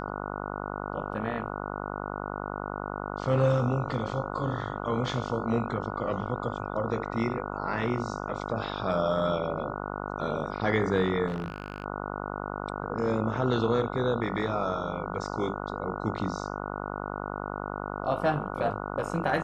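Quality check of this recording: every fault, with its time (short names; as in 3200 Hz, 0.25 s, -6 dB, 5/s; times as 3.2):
buzz 50 Hz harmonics 29 -35 dBFS
11.28–11.84 clipped -28 dBFS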